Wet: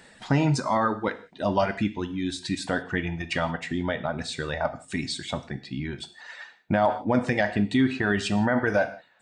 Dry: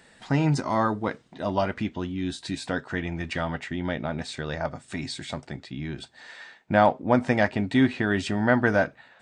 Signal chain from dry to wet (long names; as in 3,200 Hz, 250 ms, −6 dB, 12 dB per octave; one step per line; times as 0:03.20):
reverb reduction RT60 1.9 s
reverb whose tail is shaped and stops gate 200 ms falling, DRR 10 dB
brickwall limiter −16 dBFS, peak gain reduction 10.5 dB
level +3.5 dB